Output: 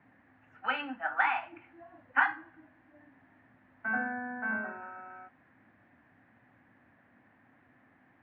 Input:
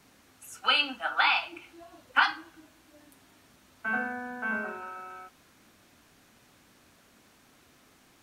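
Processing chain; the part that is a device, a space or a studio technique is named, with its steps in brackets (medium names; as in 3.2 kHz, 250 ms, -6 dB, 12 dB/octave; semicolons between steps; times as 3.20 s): bass cabinet (cabinet simulation 84–2000 Hz, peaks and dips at 110 Hz +7 dB, 260 Hz +5 dB, 410 Hz -7 dB, 770 Hz +4 dB, 1.3 kHz -4 dB, 1.8 kHz +9 dB); trim -3.5 dB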